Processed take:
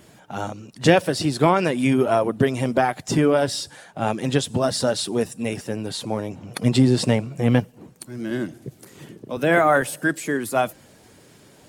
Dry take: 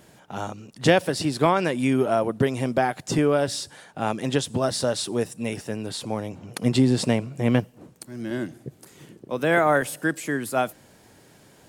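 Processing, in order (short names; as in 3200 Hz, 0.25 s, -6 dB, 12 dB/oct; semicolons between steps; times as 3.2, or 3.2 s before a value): bin magnitudes rounded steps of 15 dB; 8.62–9.37 three-band squash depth 40%; gain +3 dB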